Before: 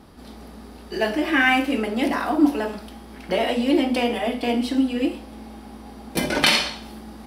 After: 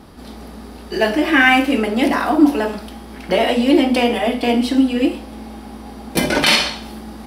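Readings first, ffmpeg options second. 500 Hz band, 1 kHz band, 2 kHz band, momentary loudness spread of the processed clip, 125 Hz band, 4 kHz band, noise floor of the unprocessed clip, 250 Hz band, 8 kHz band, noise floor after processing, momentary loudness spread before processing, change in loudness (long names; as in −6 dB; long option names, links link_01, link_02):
+6.0 dB, +6.0 dB, +5.5 dB, 21 LU, +6.0 dB, +4.5 dB, −42 dBFS, +6.0 dB, +5.0 dB, −36 dBFS, 22 LU, +5.5 dB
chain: -af "alimiter=level_in=7dB:limit=-1dB:release=50:level=0:latency=1,volume=-1dB"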